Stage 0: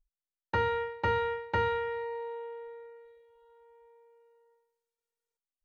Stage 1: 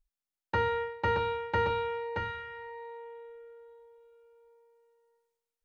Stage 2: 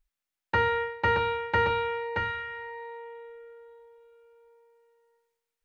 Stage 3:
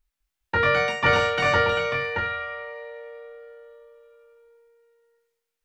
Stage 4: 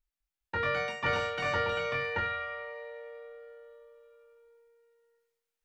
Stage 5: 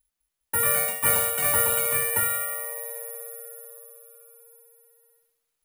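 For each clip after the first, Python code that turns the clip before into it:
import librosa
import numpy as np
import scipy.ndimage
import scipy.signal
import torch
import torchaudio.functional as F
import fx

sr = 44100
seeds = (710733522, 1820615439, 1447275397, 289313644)

y1 = x + 10.0 ** (-4.5 / 20.0) * np.pad(x, (int(625 * sr / 1000.0), 0))[:len(x)]
y2 = fx.peak_eq(y1, sr, hz=2000.0, db=5.5, octaves=1.4)
y2 = y2 * 10.0 ** (2.0 / 20.0)
y3 = fx.echo_pitch(y2, sr, ms=204, semitones=4, count=3, db_per_echo=-3.0)
y3 = fx.doubler(y3, sr, ms=22.0, db=-3.0)
y3 = y3 * 10.0 ** (1.0 / 20.0)
y4 = fx.rider(y3, sr, range_db=3, speed_s=0.5)
y4 = y4 * 10.0 ** (-8.0 / 20.0)
y5 = (np.kron(y4[::4], np.eye(4)[0]) * 4)[:len(y4)]
y5 = y5 * 10.0 ** (2.0 / 20.0)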